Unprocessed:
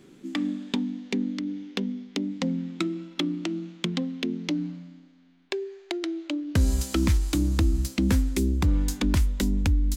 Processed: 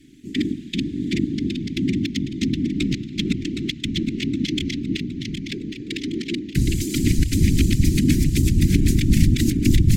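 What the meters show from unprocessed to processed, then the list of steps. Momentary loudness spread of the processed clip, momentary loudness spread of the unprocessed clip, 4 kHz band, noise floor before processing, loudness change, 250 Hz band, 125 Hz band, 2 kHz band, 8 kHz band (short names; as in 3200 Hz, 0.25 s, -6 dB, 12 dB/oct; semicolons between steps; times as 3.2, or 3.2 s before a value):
9 LU, 9 LU, +6.5 dB, -53 dBFS, +5.5 dB, +6.0 dB, +7.5 dB, +5.5 dB, +6.5 dB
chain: regenerating reverse delay 0.383 s, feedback 67%, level -1 dB; whisperiser; elliptic band-stop 310–2000 Hz, stop band 80 dB; gain +3.5 dB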